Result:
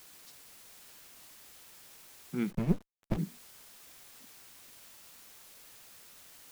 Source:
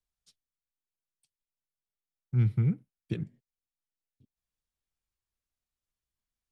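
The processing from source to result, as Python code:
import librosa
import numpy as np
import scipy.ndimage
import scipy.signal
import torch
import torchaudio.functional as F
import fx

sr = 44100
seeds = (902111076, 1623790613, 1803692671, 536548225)

y = scipy.signal.sosfilt(scipy.signal.ellip(4, 1.0, 40, 170.0, 'highpass', fs=sr, output='sos'), x)
y = fx.quant_dither(y, sr, seeds[0], bits=10, dither='triangular')
y = fx.running_max(y, sr, window=65, at=(2.5, 3.17), fade=0.02)
y = y * librosa.db_to_amplitude(5.5)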